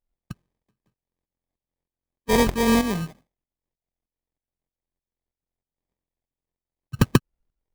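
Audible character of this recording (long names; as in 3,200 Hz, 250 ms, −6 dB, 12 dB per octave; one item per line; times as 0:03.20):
a buzz of ramps at a fixed pitch in blocks of 16 samples
tremolo saw up 3.2 Hz, depth 70%
aliases and images of a low sample rate 1,400 Hz, jitter 0%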